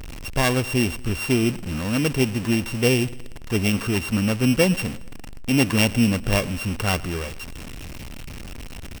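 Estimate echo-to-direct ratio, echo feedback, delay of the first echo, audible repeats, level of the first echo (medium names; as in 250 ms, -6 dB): -19.5 dB, 50%, 112 ms, 3, -20.5 dB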